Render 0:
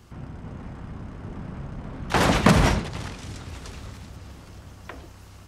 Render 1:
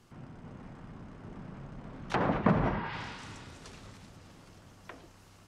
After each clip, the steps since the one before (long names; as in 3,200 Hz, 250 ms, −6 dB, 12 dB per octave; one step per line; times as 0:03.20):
healed spectral selection 0:02.75–0:03.57, 760–5,300 Hz both
treble cut that deepens with the level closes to 1,400 Hz, closed at −18 dBFS
parametric band 65 Hz −14.5 dB 0.76 octaves
level −7.5 dB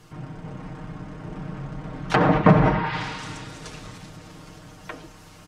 comb filter 6.5 ms, depth 69%
level +9 dB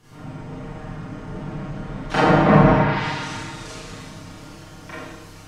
convolution reverb RT60 0.95 s, pre-delay 27 ms, DRR −9 dB
level −5.5 dB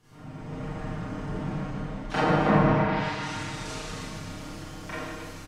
automatic gain control gain up to 7.5 dB
on a send: loudspeakers that aren't time-aligned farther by 51 metres −10 dB, 94 metres −10 dB
on the sum: level −8 dB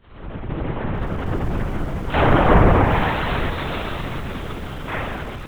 in parallel at −7 dB: soft clipping −25.5 dBFS, distortion −7 dB
on the sum: linear-prediction vocoder at 8 kHz whisper
feedback echo at a low word length 771 ms, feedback 35%, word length 7 bits, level −13.5 dB
level +6.5 dB